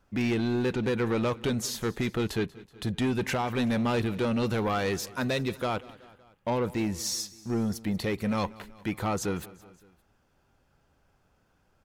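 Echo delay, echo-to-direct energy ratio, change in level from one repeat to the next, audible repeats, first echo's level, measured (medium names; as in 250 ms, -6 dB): 188 ms, -19.0 dB, -4.5 dB, 3, -20.5 dB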